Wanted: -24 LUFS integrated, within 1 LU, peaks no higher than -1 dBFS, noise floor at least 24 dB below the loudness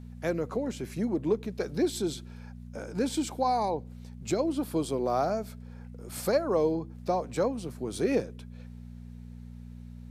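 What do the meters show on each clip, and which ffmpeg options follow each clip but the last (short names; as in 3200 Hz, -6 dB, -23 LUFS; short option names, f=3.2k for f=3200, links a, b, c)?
hum 60 Hz; harmonics up to 240 Hz; hum level -42 dBFS; loudness -30.5 LUFS; peak -14.5 dBFS; loudness target -24.0 LUFS
-> -af "bandreject=f=60:t=h:w=4,bandreject=f=120:t=h:w=4,bandreject=f=180:t=h:w=4,bandreject=f=240:t=h:w=4"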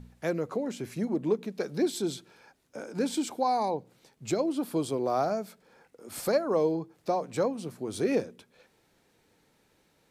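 hum none; loudness -30.5 LUFS; peak -14.5 dBFS; loudness target -24.0 LUFS
-> -af "volume=6.5dB"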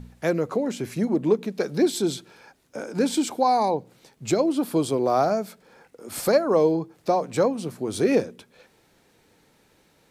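loudness -24.0 LUFS; peak -8.0 dBFS; noise floor -62 dBFS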